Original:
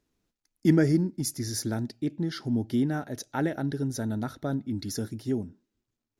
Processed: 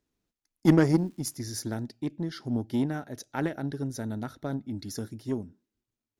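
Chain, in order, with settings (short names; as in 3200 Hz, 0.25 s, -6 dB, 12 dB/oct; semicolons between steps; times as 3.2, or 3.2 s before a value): added harmonics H 7 -23 dB, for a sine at -8 dBFS; 0.85–1.35 crackle 600/s -> 180/s -52 dBFS; gain +1.5 dB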